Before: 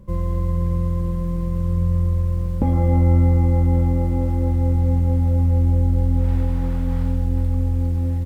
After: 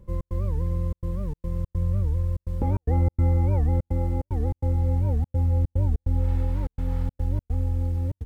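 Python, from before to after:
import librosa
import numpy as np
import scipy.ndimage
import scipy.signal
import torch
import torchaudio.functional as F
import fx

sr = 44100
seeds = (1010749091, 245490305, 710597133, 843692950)

y = x + 0.37 * np.pad(x, (int(2.3 * sr / 1000.0), 0))[:len(x)]
y = fx.step_gate(y, sr, bpm=146, pattern='xx.xxxxxx.xxx.', floor_db=-60.0, edge_ms=4.5)
y = fx.record_warp(y, sr, rpm=78.0, depth_cents=250.0)
y = y * 10.0 ** (-6.0 / 20.0)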